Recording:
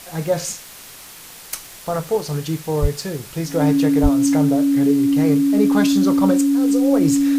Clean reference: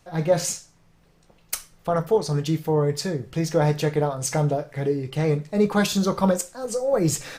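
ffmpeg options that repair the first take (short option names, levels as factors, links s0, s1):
-filter_complex "[0:a]adeclick=t=4,bandreject=f=280:w=30,asplit=3[s0][s1][s2];[s0]afade=t=out:st=2.81:d=0.02[s3];[s1]highpass=f=140:w=0.5412,highpass=f=140:w=1.3066,afade=t=in:st=2.81:d=0.02,afade=t=out:st=2.93:d=0.02[s4];[s2]afade=t=in:st=2.93:d=0.02[s5];[s3][s4][s5]amix=inputs=3:normalize=0,asplit=3[s6][s7][s8];[s6]afade=t=out:st=4.02:d=0.02[s9];[s7]highpass=f=140:w=0.5412,highpass=f=140:w=1.3066,afade=t=in:st=4.02:d=0.02,afade=t=out:st=4.14:d=0.02[s10];[s8]afade=t=in:st=4.14:d=0.02[s11];[s9][s10][s11]amix=inputs=3:normalize=0,afwtdn=0.013"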